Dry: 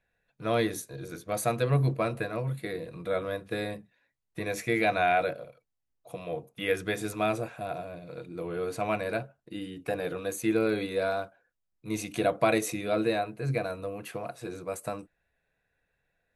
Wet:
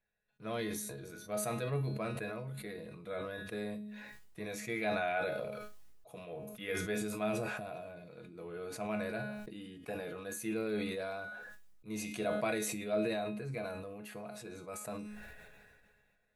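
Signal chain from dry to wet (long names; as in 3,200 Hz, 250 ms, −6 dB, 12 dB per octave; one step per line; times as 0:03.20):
tuned comb filter 210 Hz, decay 0.32 s, harmonics all, mix 80%
level that may fall only so fast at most 28 dB per second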